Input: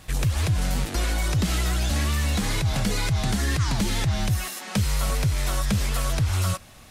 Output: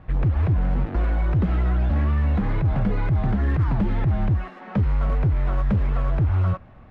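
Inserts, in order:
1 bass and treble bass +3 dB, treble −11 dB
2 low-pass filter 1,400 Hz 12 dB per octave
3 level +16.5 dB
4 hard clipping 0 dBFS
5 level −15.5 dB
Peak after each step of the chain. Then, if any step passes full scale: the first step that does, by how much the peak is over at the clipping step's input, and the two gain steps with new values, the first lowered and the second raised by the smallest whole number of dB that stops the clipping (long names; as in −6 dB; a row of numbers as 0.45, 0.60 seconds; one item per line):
−12.5, −12.5, +4.0, 0.0, −15.5 dBFS
step 3, 4.0 dB
step 3 +12.5 dB, step 5 −11.5 dB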